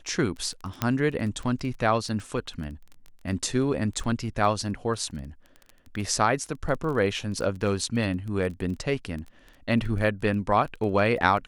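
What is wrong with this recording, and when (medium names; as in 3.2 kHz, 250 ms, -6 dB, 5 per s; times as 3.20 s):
crackle 12 per s -33 dBFS
0.82 s: pop -10 dBFS
7.61 s: dropout 2 ms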